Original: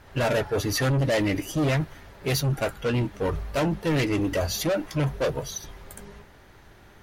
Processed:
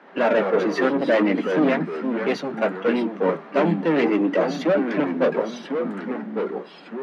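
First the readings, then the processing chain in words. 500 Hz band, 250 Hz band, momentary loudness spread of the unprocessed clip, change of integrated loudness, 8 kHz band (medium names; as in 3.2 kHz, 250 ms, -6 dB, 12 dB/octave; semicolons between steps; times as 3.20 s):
+6.5 dB, +6.5 dB, 12 LU, +4.0 dB, under -10 dB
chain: low-pass 2.1 kHz 12 dB/octave; ever faster or slower copies 167 ms, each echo -3 st, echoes 2, each echo -6 dB; steep high-pass 170 Hz 96 dB/octave; trim +5.5 dB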